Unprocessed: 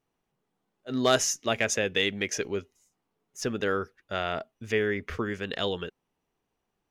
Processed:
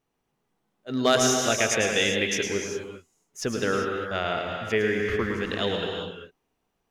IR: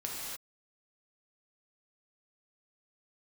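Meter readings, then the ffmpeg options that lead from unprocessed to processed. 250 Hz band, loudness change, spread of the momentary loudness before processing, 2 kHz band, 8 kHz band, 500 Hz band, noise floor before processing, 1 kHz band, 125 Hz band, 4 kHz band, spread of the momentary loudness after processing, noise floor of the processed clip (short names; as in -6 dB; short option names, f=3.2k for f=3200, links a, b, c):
+4.0 dB, +3.5 dB, 11 LU, +4.0 dB, +4.0 dB, +3.5 dB, -81 dBFS, +4.0 dB, +3.5 dB, +3.5 dB, 12 LU, -78 dBFS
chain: -filter_complex "[0:a]asplit=2[a][b];[1:a]atrim=start_sample=2205,adelay=108[c];[b][c]afir=irnorm=-1:irlink=0,volume=-4dB[d];[a][d]amix=inputs=2:normalize=0,volume=1.5dB"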